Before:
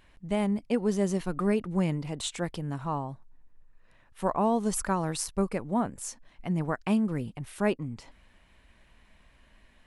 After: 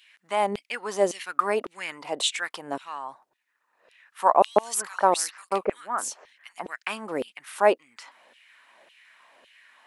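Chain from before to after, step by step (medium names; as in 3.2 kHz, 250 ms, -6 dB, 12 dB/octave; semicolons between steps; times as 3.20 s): peaking EQ 290 Hz +7 dB 1.6 oct; LFO high-pass saw down 1.8 Hz 510–3100 Hz; 4.42–6.66 s: bands offset in time highs, lows 140 ms, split 2.2 kHz; trim +5 dB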